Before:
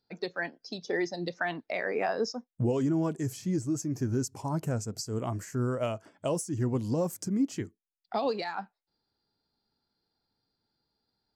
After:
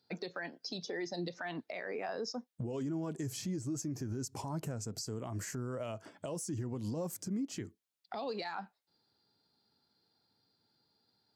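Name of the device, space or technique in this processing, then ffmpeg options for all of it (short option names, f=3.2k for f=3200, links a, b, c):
broadcast voice chain: -af "highpass=f=85:w=0.5412,highpass=f=85:w=1.3066,deesser=0.6,acompressor=threshold=-35dB:ratio=4,equalizer=f=3.9k:t=o:w=0.77:g=3,alimiter=level_in=9.5dB:limit=-24dB:level=0:latency=1:release=93,volume=-9.5dB,volume=3.5dB"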